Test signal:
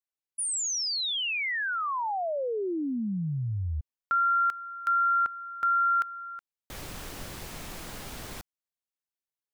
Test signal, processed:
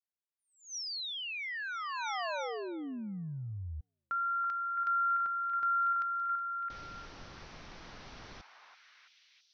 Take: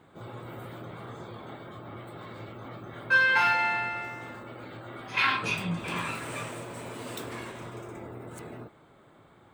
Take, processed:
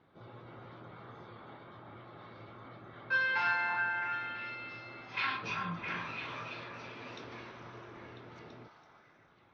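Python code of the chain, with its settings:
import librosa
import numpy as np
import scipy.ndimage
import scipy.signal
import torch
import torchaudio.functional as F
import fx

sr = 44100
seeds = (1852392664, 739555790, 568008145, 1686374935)

y = scipy.signal.sosfilt(scipy.signal.cheby1(6, 1.0, 5900.0, 'lowpass', fs=sr, output='sos'), x)
y = fx.echo_stepped(y, sr, ms=332, hz=1100.0, octaves=0.7, feedback_pct=70, wet_db=-1.5)
y = F.gain(torch.from_numpy(y), -8.5).numpy()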